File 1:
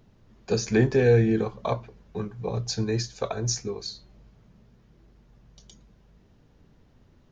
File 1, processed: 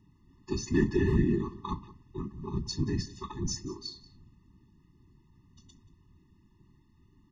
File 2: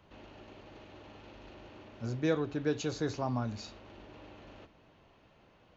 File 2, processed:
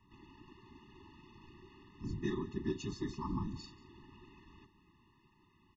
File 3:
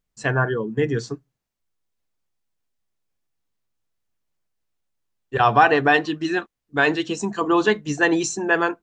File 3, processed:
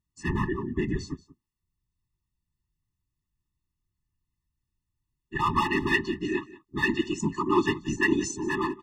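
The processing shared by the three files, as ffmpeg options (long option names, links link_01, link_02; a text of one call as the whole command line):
ffmpeg -i in.wav -filter_complex "[0:a]asoftclip=type=hard:threshold=-12dB,afftfilt=real='hypot(re,im)*cos(2*PI*random(0))':imag='hypot(re,im)*sin(2*PI*random(1))':win_size=512:overlap=0.75,asplit=2[link_01][link_02];[link_02]aecho=0:1:182:0.106[link_03];[link_01][link_03]amix=inputs=2:normalize=0,afftfilt=real='re*eq(mod(floor(b*sr/1024/420),2),0)':imag='im*eq(mod(floor(b*sr/1024/420),2),0)':win_size=1024:overlap=0.75,volume=2.5dB" out.wav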